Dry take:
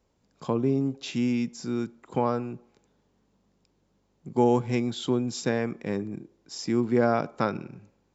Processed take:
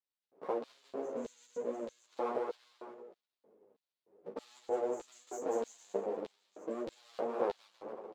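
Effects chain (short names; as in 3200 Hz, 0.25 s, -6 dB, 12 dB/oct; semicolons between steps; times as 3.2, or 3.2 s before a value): low-pass opened by the level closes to 410 Hz, open at -23.5 dBFS; FFT band-reject 1200–6100 Hz; limiter -16.5 dBFS, peak gain reduction 6.5 dB; compressor 2.5:1, threshold -46 dBFS, peak gain reduction 16.5 dB; bouncing-ball echo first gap 0.19 s, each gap 0.8×, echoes 5; half-wave rectifier; LFO high-pass square 1.6 Hz 460–4000 Hz; ensemble effect; gain +11 dB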